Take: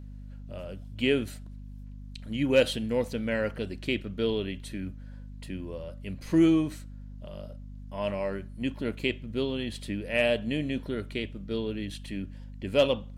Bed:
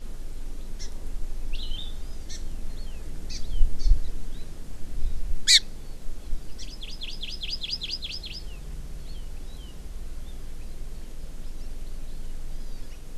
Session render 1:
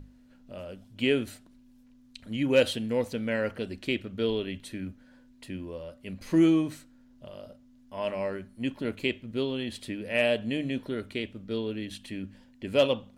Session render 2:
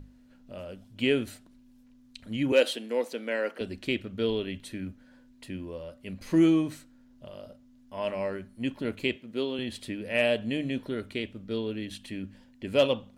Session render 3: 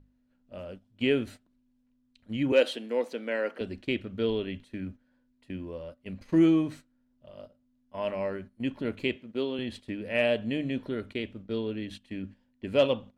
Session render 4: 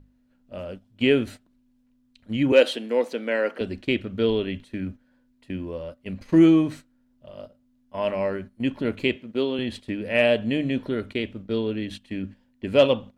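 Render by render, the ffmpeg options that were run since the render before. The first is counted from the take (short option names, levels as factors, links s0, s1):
-af "bandreject=f=50:t=h:w=6,bandreject=f=100:t=h:w=6,bandreject=f=150:t=h:w=6,bandreject=f=200:t=h:w=6"
-filter_complex "[0:a]asettb=1/sr,asplit=3[s0][s1][s2];[s0]atrim=end=2.524[s3];[s1]atrim=start=2.52:end=3.61,asetpts=PTS-STARTPTS,afade=t=in:d=0.004:c=qsin,afade=t=out:st=1.086:d=0.004:c=qsin,highpass=f=280:w=0.5412,highpass=f=280:w=1.3066[s4];[s2]atrim=start=3.606[s5];[s3][s4]acrossfade=d=0.004:c1=hsin:c2=qsin[s6];[s6][s5]acrossfade=d=0.004:c1=qsin:c2=hsin,asettb=1/sr,asplit=3[s7][s8][s9];[s7]atrim=end=9.164[s10];[s8]atrim=start=9.16:end=9.59,asetpts=PTS-STARTPTS,afade=t=in:d=0.004:c=qsin,afade=t=out:st=0.426:d=0.004:c=qsin,highpass=220[s11];[s9]atrim=start=9.586[s12];[s10][s11]acrossfade=d=0.004:c1=hsin:c2=qsin[s13];[s13][s12]acrossfade=d=0.004:c1=qsin:c2=hsin"
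-af "lowpass=f=3400:p=1,agate=range=0.224:threshold=0.00708:ratio=16:detection=peak"
-af "volume=2"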